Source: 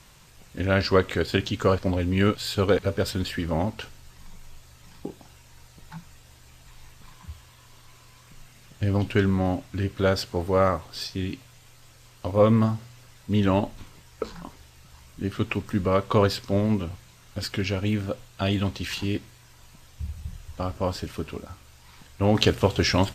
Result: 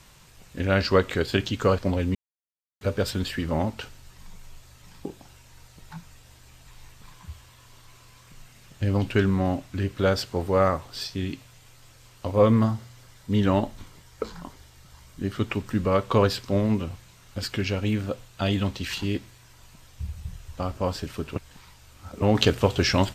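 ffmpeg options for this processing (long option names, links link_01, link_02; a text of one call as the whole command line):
ffmpeg -i in.wav -filter_complex "[0:a]asettb=1/sr,asplit=3[link_01][link_02][link_03];[link_01]atrim=end=12.464[link_04];[link_02]atrim=start=12.46:end=15.56,asetpts=PTS-STARTPTS,afade=type=in:duration=0.004:curve=qsin,afade=type=out:start_time=3.096:duration=0.004:curve=qsin,bandreject=frequency=2600:width=12[link_05];[link_03]atrim=start=15.556[link_06];[link_04][link_05]acrossfade=duration=0.004:curve1=hsin:curve2=qsin[link_07];[link_07][link_06]acrossfade=duration=0.004:curve1=qsin:curve2=hsin,asplit=5[link_08][link_09][link_10][link_11][link_12];[link_08]atrim=end=2.15,asetpts=PTS-STARTPTS,afade=type=out:start_time=2.146:duration=0.004:curve=hsin[link_13];[link_09]atrim=start=2.15:end=2.81,asetpts=PTS-STARTPTS,volume=0[link_14];[link_10]atrim=start=2.81:end=21.362,asetpts=PTS-STARTPTS,afade=type=in:duration=0.004:curve=hsin[link_15];[link_11]atrim=start=21.358:end=22.222,asetpts=PTS-STARTPTS,areverse[link_16];[link_12]atrim=start=22.218[link_17];[link_13][link_14][link_15]concat=n=3:v=0:a=1[link_18];[link_18][link_16]acrossfade=duration=0.004:curve1=hsin:curve2=hsin[link_19];[link_19][link_17]acrossfade=duration=0.004:curve1=hsin:curve2=hsin" out.wav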